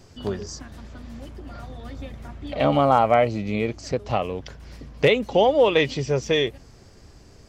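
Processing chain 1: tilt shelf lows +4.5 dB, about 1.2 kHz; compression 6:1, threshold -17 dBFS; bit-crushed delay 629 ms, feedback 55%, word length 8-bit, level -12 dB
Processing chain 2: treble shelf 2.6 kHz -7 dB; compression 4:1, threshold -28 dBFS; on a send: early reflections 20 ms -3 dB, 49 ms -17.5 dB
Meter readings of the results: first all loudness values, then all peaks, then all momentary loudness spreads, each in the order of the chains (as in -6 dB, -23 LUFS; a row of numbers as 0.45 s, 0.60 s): -25.0 LUFS, -31.5 LUFS; -7.0 dBFS, -14.5 dBFS; 14 LU, 12 LU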